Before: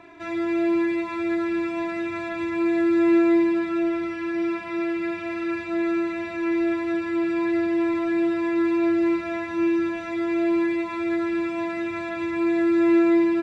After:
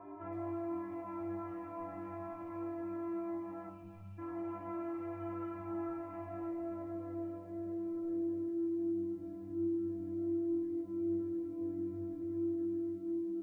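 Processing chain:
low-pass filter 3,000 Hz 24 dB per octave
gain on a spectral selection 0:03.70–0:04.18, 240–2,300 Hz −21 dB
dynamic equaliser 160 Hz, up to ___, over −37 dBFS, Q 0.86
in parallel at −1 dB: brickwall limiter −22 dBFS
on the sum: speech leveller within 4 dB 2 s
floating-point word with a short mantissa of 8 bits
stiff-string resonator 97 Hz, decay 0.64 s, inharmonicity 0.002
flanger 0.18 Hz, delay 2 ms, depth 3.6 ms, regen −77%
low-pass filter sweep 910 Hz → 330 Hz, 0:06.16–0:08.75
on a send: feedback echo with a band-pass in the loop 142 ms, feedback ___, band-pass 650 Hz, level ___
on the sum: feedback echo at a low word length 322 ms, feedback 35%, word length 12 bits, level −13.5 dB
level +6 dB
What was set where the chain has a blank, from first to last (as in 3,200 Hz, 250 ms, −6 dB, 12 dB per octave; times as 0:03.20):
−3 dB, 58%, −14 dB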